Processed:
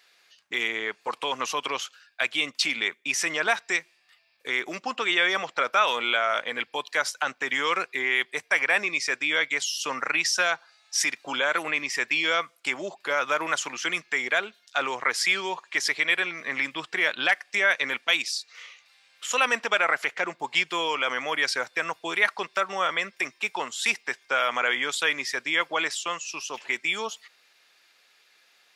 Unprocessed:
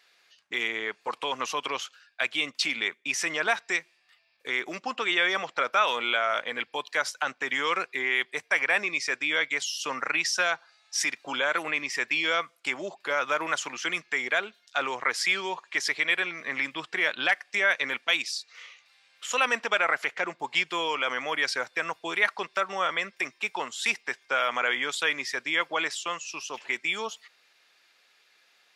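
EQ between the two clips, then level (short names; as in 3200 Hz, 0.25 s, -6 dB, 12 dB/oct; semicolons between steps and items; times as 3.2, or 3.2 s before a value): high shelf 7600 Hz +4.5 dB; +1.5 dB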